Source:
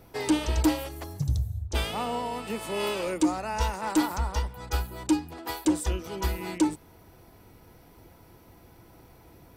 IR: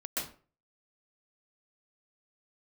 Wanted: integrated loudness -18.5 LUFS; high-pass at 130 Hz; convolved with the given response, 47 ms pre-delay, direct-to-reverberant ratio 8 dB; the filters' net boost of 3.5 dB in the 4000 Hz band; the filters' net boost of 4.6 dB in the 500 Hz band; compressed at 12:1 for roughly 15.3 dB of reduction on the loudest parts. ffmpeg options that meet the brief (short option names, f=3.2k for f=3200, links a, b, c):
-filter_complex "[0:a]highpass=130,equalizer=f=500:t=o:g=6,equalizer=f=4k:t=o:g=4.5,acompressor=threshold=-31dB:ratio=12,asplit=2[a][b];[1:a]atrim=start_sample=2205,adelay=47[c];[b][c]afir=irnorm=-1:irlink=0,volume=-12dB[d];[a][d]amix=inputs=2:normalize=0,volume=17dB"